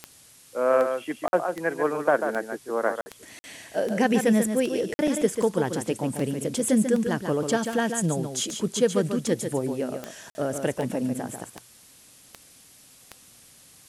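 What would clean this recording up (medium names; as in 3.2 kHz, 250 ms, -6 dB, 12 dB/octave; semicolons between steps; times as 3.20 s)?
de-click; interpolate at 1.28/3.01/3.39/4.94/10.30 s, 50 ms; noise print and reduce 17 dB; inverse comb 142 ms -7 dB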